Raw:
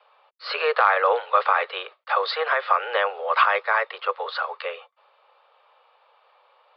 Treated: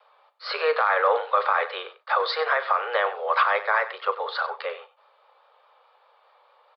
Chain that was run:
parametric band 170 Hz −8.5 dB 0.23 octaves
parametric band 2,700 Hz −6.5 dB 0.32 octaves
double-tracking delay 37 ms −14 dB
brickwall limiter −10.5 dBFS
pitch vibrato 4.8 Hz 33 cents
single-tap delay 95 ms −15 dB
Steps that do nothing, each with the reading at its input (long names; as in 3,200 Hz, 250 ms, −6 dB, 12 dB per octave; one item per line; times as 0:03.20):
parametric band 170 Hz: nothing at its input below 360 Hz